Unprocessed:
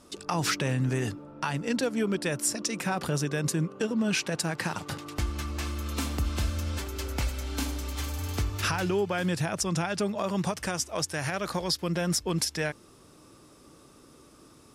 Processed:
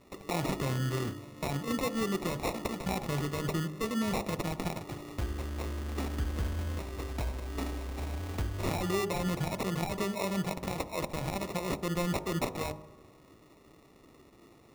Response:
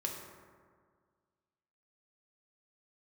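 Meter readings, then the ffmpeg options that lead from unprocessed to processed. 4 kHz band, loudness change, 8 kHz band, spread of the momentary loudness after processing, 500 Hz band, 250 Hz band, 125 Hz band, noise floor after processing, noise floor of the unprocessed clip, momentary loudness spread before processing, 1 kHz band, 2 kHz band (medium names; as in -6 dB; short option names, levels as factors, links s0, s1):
-7.5 dB, -4.5 dB, -11.0 dB, 6 LU, -3.0 dB, -3.5 dB, -3.5 dB, -58 dBFS, -55 dBFS, 6 LU, -2.5 dB, -7.0 dB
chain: -filter_complex "[0:a]acrusher=samples=28:mix=1:aa=0.000001,bandreject=f=51.29:t=h:w=4,bandreject=f=102.58:t=h:w=4,bandreject=f=153.87:t=h:w=4,bandreject=f=205.16:t=h:w=4,bandreject=f=256.45:t=h:w=4,bandreject=f=307.74:t=h:w=4,bandreject=f=359.03:t=h:w=4,bandreject=f=410.32:t=h:w=4,bandreject=f=461.61:t=h:w=4,bandreject=f=512.9:t=h:w=4,bandreject=f=564.19:t=h:w=4,bandreject=f=615.48:t=h:w=4,bandreject=f=666.77:t=h:w=4,bandreject=f=718.06:t=h:w=4,bandreject=f=769.35:t=h:w=4,bandreject=f=820.64:t=h:w=4,bandreject=f=871.93:t=h:w=4,bandreject=f=923.22:t=h:w=4,bandreject=f=974.51:t=h:w=4,bandreject=f=1025.8:t=h:w=4,asplit=2[s0][s1];[1:a]atrim=start_sample=2205[s2];[s1][s2]afir=irnorm=-1:irlink=0,volume=0.178[s3];[s0][s3]amix=inputs=2:normalize=0,volume=0.596"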